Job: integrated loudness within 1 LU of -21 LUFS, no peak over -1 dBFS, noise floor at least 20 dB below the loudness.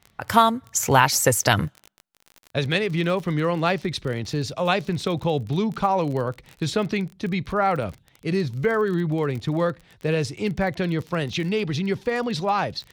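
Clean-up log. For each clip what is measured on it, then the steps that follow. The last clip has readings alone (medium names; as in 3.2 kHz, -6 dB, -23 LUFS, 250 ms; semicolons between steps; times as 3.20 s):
tick rate 29 per s; loudness -23.5 LUFS; peak level -2.0 dBFS; loudness target -21.0 LUFS
-> de-click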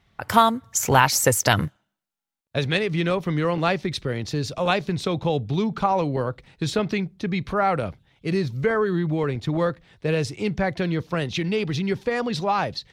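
tick rate 0 per s; loudness -23.5 LUFS; peak level -2.0 dBFS; loudness target -21.0 LUFS
-> trim +2.5 dB; peak limiter -1 dBFS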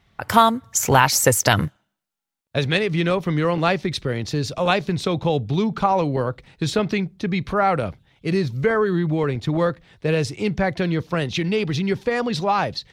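loudness -21.5 LUFS; peak level -1.0 dBFS; noise floor -76 dBFS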